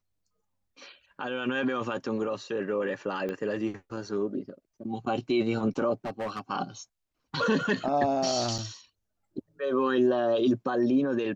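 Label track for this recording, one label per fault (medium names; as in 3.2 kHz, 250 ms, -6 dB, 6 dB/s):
3.290000	3.290000	pop -22 dBFS
6.050000	6.400000	clipped -29.5 dBFS
8.580000	8.590000	dropout 6.6 ms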